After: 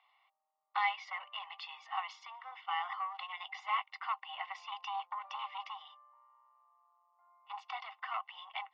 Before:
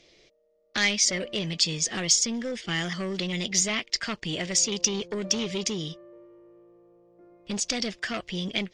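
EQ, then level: polynomial smoothing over 65 samples; rippled Chebyshev high-pass 760 Hz, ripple 9 dB; air absorption 370 m; +14.0 dB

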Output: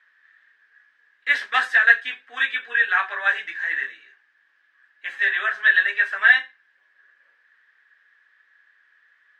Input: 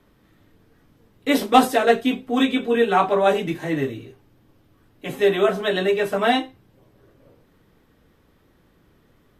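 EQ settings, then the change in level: resonant high-pass 1700 Hz, resonance Q 16; air absorption 110 m; -3.0 dB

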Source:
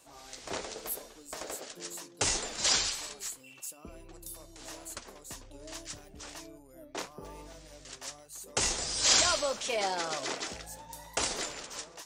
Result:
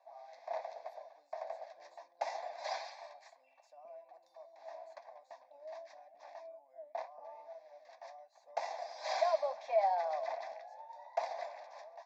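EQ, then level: ladder high-pass 610 Hz, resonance 70%; tape spacing loss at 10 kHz 35 dB; fixed phaser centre 2000 Hz, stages 8; +8.0 dB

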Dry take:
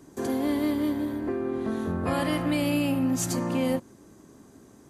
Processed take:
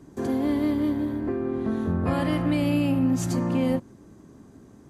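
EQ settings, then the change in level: tone controls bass +6 dB, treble +2 dB; high shelf 4900 Hz -11 dB; 0.0 dB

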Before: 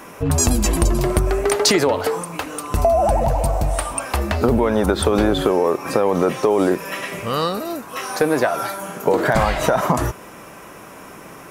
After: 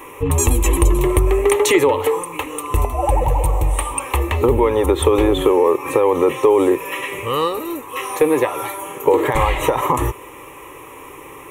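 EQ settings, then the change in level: fixed phaser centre 1000 Hz, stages 8; +4.5 dB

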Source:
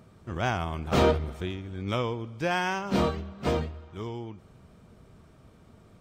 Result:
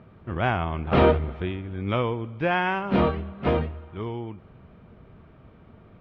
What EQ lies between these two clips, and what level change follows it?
LPF 3000 Hz 24 dB/oct; +4.0 dB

